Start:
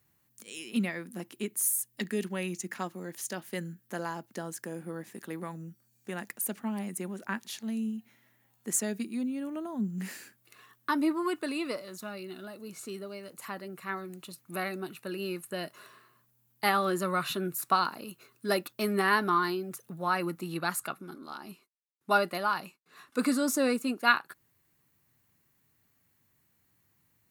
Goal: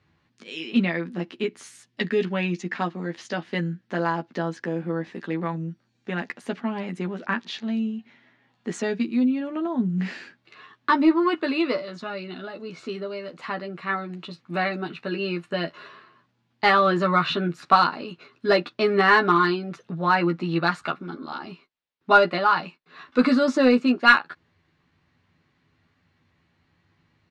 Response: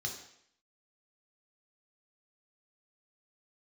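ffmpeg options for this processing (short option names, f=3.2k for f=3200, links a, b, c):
-filter_complex "[0:a]lowpass=f=4.3k:w=0.5412,lowpass=f=4.3k:w=1.3066,asplit=2[a][b];[b]adelay=12,volume=-4.5dB[c];[a][c]amix=inputs=2:normalize=0,asplit=2[d][e];[e]aeval=exprs='clip(val(0),-1,0.0891)':c=same,volume=-10dB[f];[d][f]amix=inputs=2:normalize=0,volume=5.5dB"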